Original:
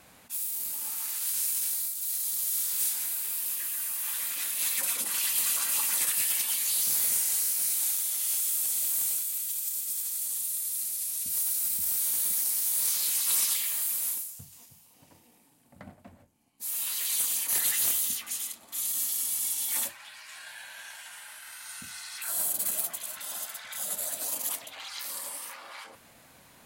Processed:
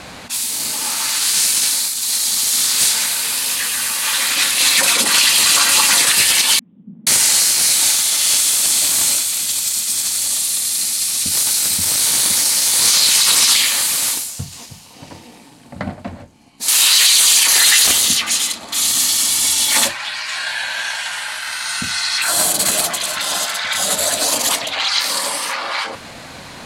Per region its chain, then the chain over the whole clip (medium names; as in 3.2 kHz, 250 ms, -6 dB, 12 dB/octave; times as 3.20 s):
6.59–7.07 s: Butterworth band-pass 200 Hz, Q 2.8 + careless resampling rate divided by 6×, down none, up filtered
16.68–17.87 s: companding laws mixed up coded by mu + high-pass 130 Hz 6 dB/octave + tilt shelf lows -5.5 dB, about 750 Hz
whole clip: low-pass 6.7 kHz 12 dB/octave; peaking EQ 4.3 kHz +4 dB 0.36 oct; loudness maximiser +23 dB; trim -1 dB